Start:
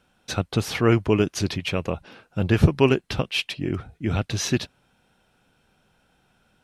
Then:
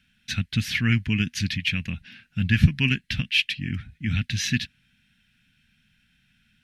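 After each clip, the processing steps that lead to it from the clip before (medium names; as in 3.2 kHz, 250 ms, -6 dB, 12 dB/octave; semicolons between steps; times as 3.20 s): FFT filter 240 Hz 0 dB, 360 Hz -23 dB, 560 Hz -27 dB, 1.2 kHz -18 dB, 1.7 kHz +5 dB, 2.7 kHz +5 dB, 8.3 kHz -5 dB, 13 kHz -2 dB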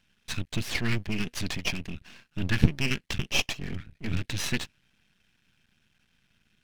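half-wave rectifier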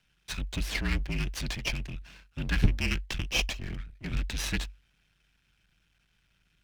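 frequency shift -48 Hz; trim -2 dB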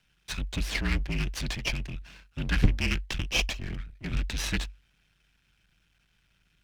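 loudspeaker Doppler distortion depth 0.49 ms; trim +1.5 dB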